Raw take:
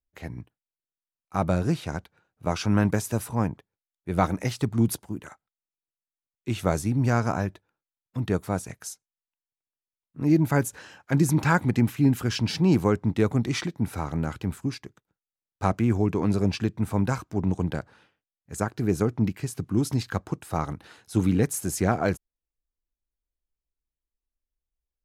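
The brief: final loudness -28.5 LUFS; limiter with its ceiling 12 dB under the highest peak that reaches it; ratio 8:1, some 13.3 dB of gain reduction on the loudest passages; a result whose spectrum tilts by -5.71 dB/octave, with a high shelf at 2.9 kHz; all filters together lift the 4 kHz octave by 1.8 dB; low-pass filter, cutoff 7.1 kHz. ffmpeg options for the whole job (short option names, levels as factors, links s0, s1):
-af "lowpass=7100,highshelf=f=2900:g=-5,equalizer=f=4000:t=o:g=7,acompressor=threshold=0.0316:ratio=8,volume=3.98,alimiter=limit=0.158:level=0:latency=1"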